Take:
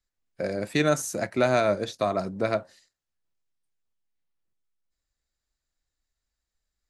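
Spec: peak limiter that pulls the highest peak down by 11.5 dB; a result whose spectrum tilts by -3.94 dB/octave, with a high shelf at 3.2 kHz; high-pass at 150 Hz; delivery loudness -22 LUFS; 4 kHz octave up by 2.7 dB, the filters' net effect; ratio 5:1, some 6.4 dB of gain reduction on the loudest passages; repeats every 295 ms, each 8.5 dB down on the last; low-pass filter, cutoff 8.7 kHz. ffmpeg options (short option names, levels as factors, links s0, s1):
-af "highpass=150,lowpass=8700,highshelf=f=3200:g=-6,equalizer=f=4000:t=o:g=7,acompressor=threshold=0.0562:ratio=5,alimiter=level_in=1.33:limit=0.0631:level=0:latency=1,volume=0.75,aecho=1:1:295|590|885|1180:0.376|0.143|0.0543|0.0206,volume=5.31"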